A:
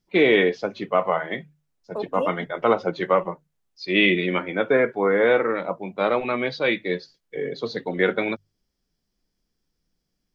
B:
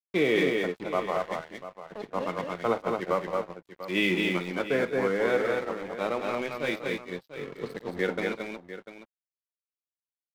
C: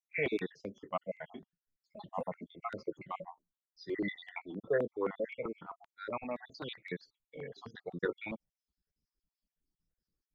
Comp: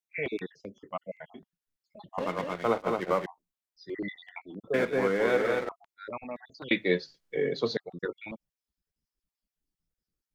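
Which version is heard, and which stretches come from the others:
C
2.18–3.26 from B
4.74–5.69 from B
6.71–7.77 from A

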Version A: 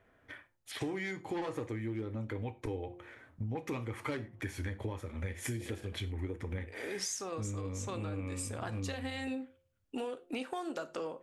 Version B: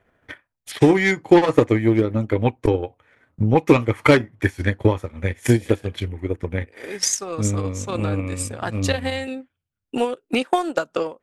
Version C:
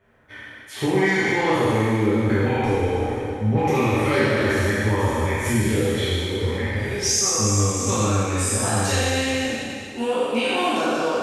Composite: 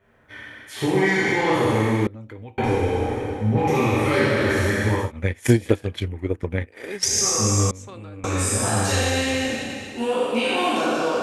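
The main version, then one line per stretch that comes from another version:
C
2.07–2.58 from A
5.04–7.1 from B, crossfade 0.16 s
7.71–8.24 from A

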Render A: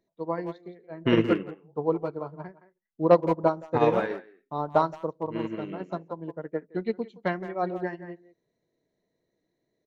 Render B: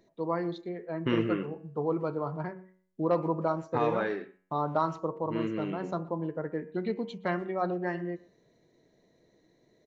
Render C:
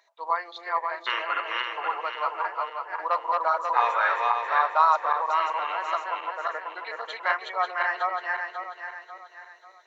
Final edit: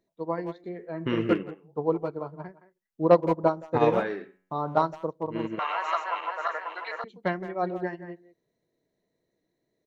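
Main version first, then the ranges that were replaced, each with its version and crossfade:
A
0.64–1.29 from B
4.03–4.77 from B
5.59–7.04 from C

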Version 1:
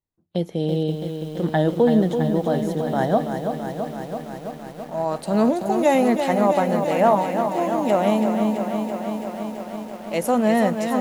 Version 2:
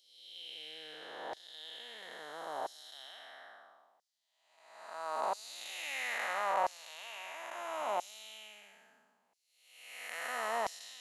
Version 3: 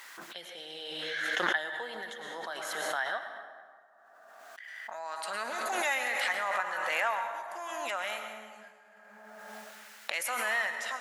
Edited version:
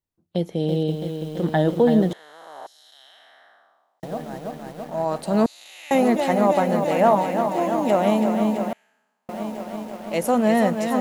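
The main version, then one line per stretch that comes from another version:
1
2.13–4.03 from 2
5.46–5.91 from 2
8.73–9.29 from 2
not used: 3

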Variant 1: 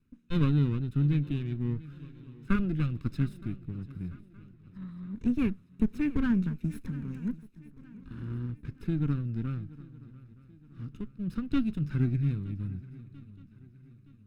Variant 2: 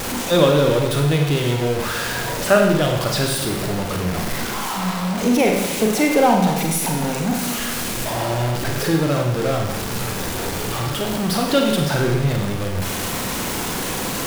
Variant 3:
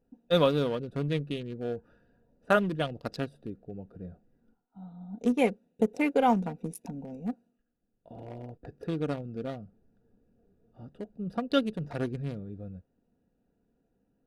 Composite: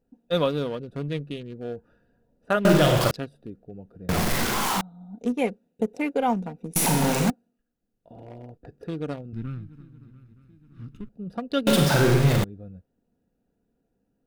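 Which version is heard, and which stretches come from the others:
3
2.65–3.11 from 2
4.09–4.81 from 2
6.76–7.3 from 2
9.33–11.09 from 1
11.67–12.44 from 2

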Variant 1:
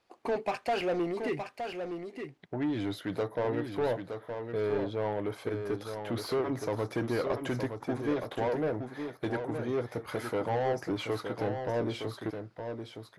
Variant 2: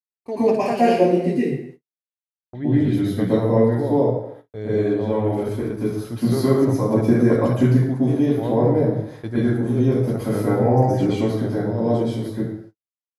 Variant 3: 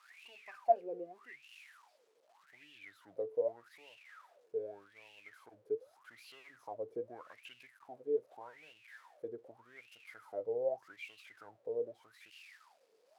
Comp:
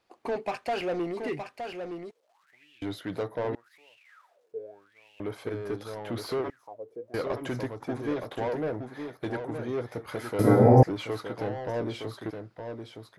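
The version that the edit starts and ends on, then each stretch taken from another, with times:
1
2.11–2.82 from 3
3.55–5.2 from 3
6.5–7.14 from 3
10.39–10.83 from 2

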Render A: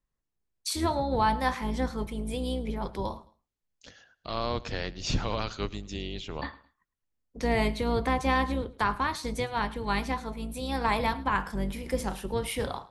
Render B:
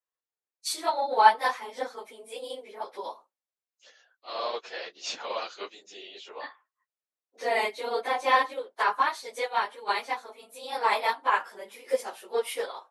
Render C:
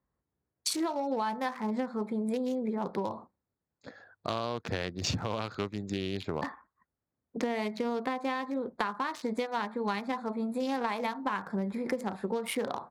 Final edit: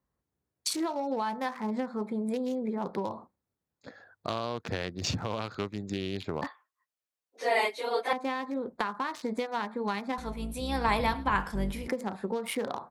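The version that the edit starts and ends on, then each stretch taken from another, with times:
C
6.47–8.13 from B
10.18–11.88 from A

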